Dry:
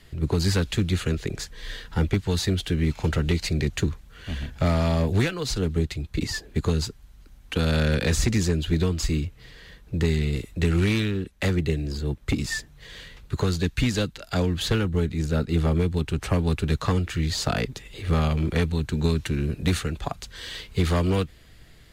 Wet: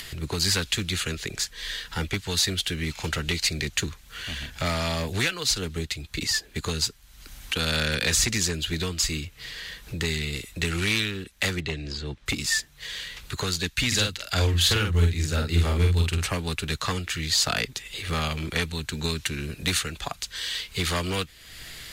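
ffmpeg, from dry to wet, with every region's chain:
-filter_complex "[0:a]asettb=1/sr,asplit=3[s0][s1][s2];[s0]atrim=end=11.604[s3];[s1]atrim=start=11.6:end=12.26,asetpts=PTS-STARTPTS,afade=t=in:d=0.004:c=qsin,afade=t=out:st=0.656:d=0.004:c=qsin,lowpass=4900,asoftclip=type=hard:threshold=0.141[s4];[s2]atrim=start=12.256[s5];[s3][s4]acrossfade=d=0.004:c1=hsin:c2=qsin[s6];[s6][s5]acrossfade=d=0.004:c1=qsin:c2=hsin,asettb=1/sr,asplit=3[s7][s8][s9];[s7]atrim=end=13.874[s10];[s8]atrim=start=13.87:end=16.26,asetpts=PTS-STARTPTS,afade=t=in:d=0.004:c=qsin,afade=t=out:st=2.386:d=0.004:c=qsin,equalizer=f=87:w=3.9:g=11.5,asplit=2[s11][s12];[s12]adelay=47,volume=0.668[s13];[s11][s13]amix=inputs=2:normalize=0,atrim=end_sample=105399[s14];[s9]atrim=start=16.256[s15];[s10][s14]acrossfade=d=0.004:c1=hsin:c2=qsin[s16];[s16][s15]acrossfade=d=0.004:c1=qsin:c2=hsin,tiltshelf=f=1100:g=-8,acompressor=mode=upward:threshold=0.0355:ratio=2.5"

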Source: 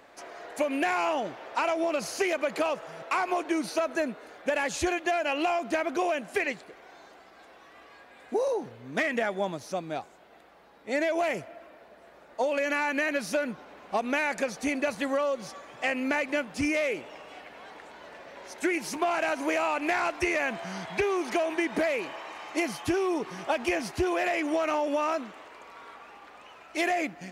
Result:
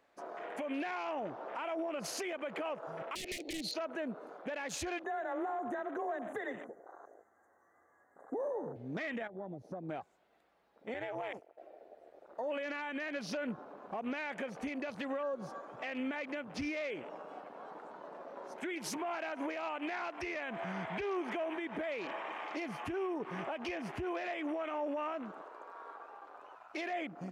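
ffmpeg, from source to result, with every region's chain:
-filter_complex "[0:a]asettb=1/sr,asplit=3[s0][s1][s2];[s0]atrim=end=3.154[s3];[s1]atrim=start=3.15:end=3.74,asetpts=PTS-STARTPTS,afade=t=in:d=0.004:c=qsin,afade=t=out:st=0.586:d=0.004:c=qsin,equalizer=f=4200:t=o:w=0.27:g=14.5,aeval=exprs='(mod(12.6*val(0)+1,2)-1)/12.6':c=same,asuperstop=centerf=1100:order=12:qfactor=0.88[s4];[s2]atrim=start=3.736[s5];[s3][s4]acrossfade=d=0.004:c1=hsin:c2=qsin[s6];[s6][s5]acrossfade=d=0.004:c1=qsin:c2=hsin,asettb=1/sr,asplit=3[s7][s8][s9];[s7]atrim=end=5.044[s10];[s8]atrim=start=5.04:end=8.76,asetpts=PTS-STARTPTS,afade=t=in:d=0.004:c=qsin,afade=t=out:st=3.716:d=0.004:c=qsin,aecho=1:1:66|109|145:0.112|0.126|0.119,atrim=end_sample=164052,afreqshift=24,asuperstop=centerf=3500:order=20:qfactor=0.87[s11];[s9]atrim=start=8.756[s12];[s10][s11]acrossfade=d=0.004:c1=hsin:c2=qsin[s13];[s13][s12]acrossfade=d=0.004:c1=qsin:c2=hsin,asettb=1/sr,asplit=3[s14][s15][s16];[s14]atrim=end=9.274[s17];[s15]atrim=start=9.27:end=9.89,asetpts=PTS-STARTPTS,afade=t=in:d=0.004:c=qsin,afade=t=out:st=0.616:d=0.004:c=qsin,agate=range=0.0224:threshold=0.00891:ratio=3:release=100:detection=peak,tiltshelf=f=1400:g=7.5,acompressor=threshold=0.0112:ratio=8:attack=3.2:release=140:knee=1:detection=peak[s18];[s16]atrim=start=9.886[s19];[s17][s18]acrossfade=d=0.004:c1=hsin:c2=qsin[s20];[s20][s19]acrossfade=d=0.004:c1=qsin:c2=hsin,asettb=1/sr,asplit=3[s21][s22][s23];[s21]atrim=end=10.944[s24];[s22]atrim=start=10.94:end=11.58,asetpts=PTS-STARTPTS,afade=t=in:d=0.004:c=qsin,afade=t=out:st=0.636:d=0.004:c=qsin,highpass=380,tremolo=f=200:d=0.889,agate=range=0.447:threshold=0.00794:ratio=16:release=100:detection=peak[s25];[s23]atrim=start=11.576[s26];[s24][s25]acrossfade=d=0.004:c1=hsin:c2=qsin[s27];[s27][s26]acrossfade=d=0.004:c1=qsin:c2=hsin,acompressor=threshold=0.0316:ratio=2.5,afwtdn=0.00631,alimiter=level_in=2:limit=0.0631:level=0:latency=1:release=133,volume=0.501"

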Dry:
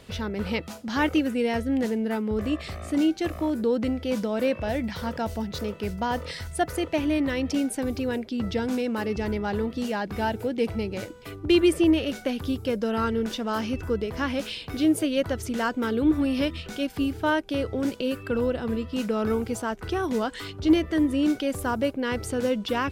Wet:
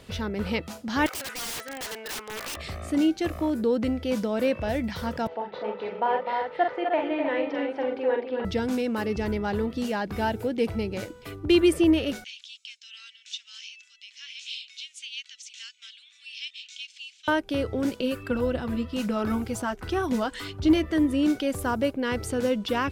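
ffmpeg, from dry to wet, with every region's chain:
-filter_complex "[0:a]asettb=1/sr,asplit=3[s0][s1][s2];[s0]atrim=end=1.064[s3];[s1]atrim=start=1.06:end=2.57,asetpts=PTS-STARTPTS,afade=t=in:d=0.004:c=qsin,afade=t=out:st=1.506:d=0.004:c=qsin,highpass=1100,asplit=2[s4][s5];[s5]highpass=f=720:p=1,volume=8.91,asoftclip=type=tanh:threshold=0.141[s6];[s4][s6]amix=inputs=2:normalize=0,lowpass=f=1600:p=1,volume=0.501,aeval=exprs='(mod(28.2*val(0)+1,2)-1)/28.2':c=same[s7];[s2]atrim=start=2.566[s8];[s3][s7]acrossfade=d=0.004:c1=hsin:c2=qsin[s9];[s9][s8]acrossfade=d=0.004:c1=qsin:c2=hsin,asettb=1/sr,asplit=3[s10][s11][s12];[s10]atrim=end=5.274[s13];[s11]atrim=start=5.27:end=8.45,asetpts=PTS-STARTPTS,afade=t=in:d=0.004:c=qsin,afade=t=out:st=3.176:d=0.004:c=qsin,highpass=470,equalizer=f=490:t=q:w=4:g=6,equalizer=f=870:t=q:w=4:g=8,equalizer=f=1300:t=q:w=4:g=-3,equalizer=f=2600:t=q:w=4:g=-4,lowpass=f=2800:w=0.5412,lowpass=f=2800:w=1.3066,aecho=1:1:43|253|308:0.562|0.473|0.447,atrim=end_sample=140238[s14];[s12]atrim=start=8.446[s15];[s13][s14]acrossfade=d=0.004:c1=hsin:c2=qsin[s16];[s16][s15]acrossfade=d=0.004:c1=qsin:c2=hsin,asettb=1/sr,asplit=3[s17][s18][s19];[s17]atrim=end=12.244[s20];[s18]atrim=start=12.24:end=17.28,asetpts=PTS-STARTPTS,afade=t=in:d=0.004:c=qsin,afade=t=out:st=5.036:d=0.004:c=qsin,asuperpass=centerf=4400:order=8:qfactor=0.87,bandreject=f=4800:w=15[s21];[s19]atrim=start=17.276[s22];[s20][s21]acrossfade=d=0.004:c1=hsin:c2=qsin[s23];[s23][s22]acrossfade=d=0.004:c1=qsin:c2=hsin,asettb=1/sr,asplit=3[s24][s25][s26];[s24]atrim=end=18.034[s27];[s25]atrim=start=18.03:end=20.91,asetpts=PTS-STARTPTS,afade=t=in:d=0.004:c=qsin,afade=t=out:st=2.876:d=0.004:c=qsin,aphaser=in_gain=1:out_gain=1:delay=4.5:decay=0.29:speed=1.9:type=triangular,bandreject=f=450:w=8.3[s28];[s26]atrim=start=20.906[s29];[s27][s28]acrossfade=d=0.004:c1=hsin:c2=qsin[s30];[s30][s29]acrossfade=d=0.004:c1=qsin:c2=hsin"

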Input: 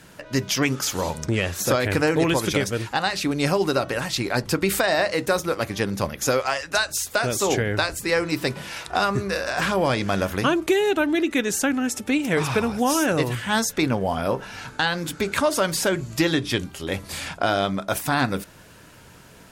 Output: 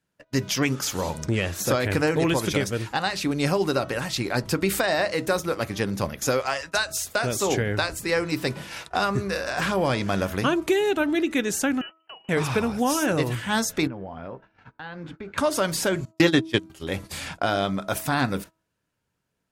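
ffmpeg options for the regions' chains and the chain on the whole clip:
-filter_complex "[0:a]asettb=1/sr,asplit=3[s0][s1][s2];[s0]atrim=end=11.814[s3];[s1]atrim=start=11.81:end=12.29,asetpts=PTS-STARTPTS,afade=t=in:d=0.004:c=qsin,afade=t=out:st=0.476:d=0.004:c=qsin,tiltshelf=f=1100:g=-5.5,acompressor=threshold=0.0282:ratio=20:attack=3.2:release=140:knee=1:detection=peak,lowpass=f=2700:t=q:w=0.5098,lowpass=f=2700:t=q:w=0.6013,lowpass=f=2700:t=q:w=0.9,lowpass=f=2700:t=q:w=2.563,afreqshift=-3200[s4];[s2]atrim=start=12.286[s5];[s3][s4]acrossfade=d=0.004:c1=hsin:c2=qsin[s6];[s6][s5]acrossfade=d=0.004:c1=qsin:c2=hsin,asettb=1/sr,asplit=3[s7][s8][s9];[s7]atrim=end=13.874[s10];[s8]atrim=start=13.87:end=15.38,asetpts=PTS-STARTPTS,afade=t=in:d=0.004:c=qsin,afade=t=out:st=1.506:d=0.004:c=qsin,lowpass=2200,acompressor=threshold=0.0316:ratio=10:attack=3.2:release=140:knee=1:detection=peak[s11];[s9]atrim=start=15.376[s12];[s10][s11]acrossfade=d=0.004:c1=hsin:c2=qsin[s13];[s13][s12]acrossfade=d=0.004:c1=qsin:c2=hsin,asettb=1/sr,asplit=3[s14][s15][s16];[s14]atrim=end=16.054[s17];[s15]atrim=start=16.05:end=16.7,asetpts=PTS-STARTPTS,afade=t=in:d=0.004:c=qsin,afade=t=out:st=0.646:d=0.004:c=qsin,agate=range=0.0708:threshold=0.0708:ratio=16:release=100:detection=peak,highpass=97,acontrast=36[s18];[s16]atrim=start=16.696[s19];[s17][s18]acrossfade=d=0.004:c1=hsin:c2=qsin[s20];[s20][s19]acrossfade=d=0.004:c1=qsin:c2=hsin,agate=range=0.0355:threshold=0.0178:ratio=16:detection=peak,equalizer=f=150:w=0.54:g=2,bandreject=f=322.8:t=h:w=4,bandreject=f=645.6:t=h:w=4,bandreject=f=968.4:t=h:w=4,bandreject=f=1291.2:t=h:w=4,volume=0.75"

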